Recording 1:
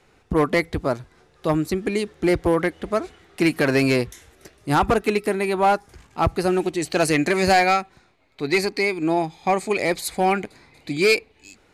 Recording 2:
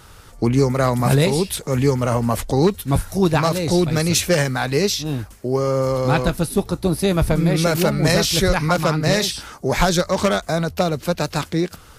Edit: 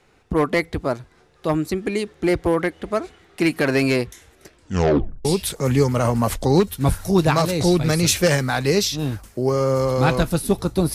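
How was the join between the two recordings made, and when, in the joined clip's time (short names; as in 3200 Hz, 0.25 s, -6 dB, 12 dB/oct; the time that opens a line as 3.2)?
recording 1
4.48 tape stop 0.77 s
5.25 switch to recording 2 from 1.32 s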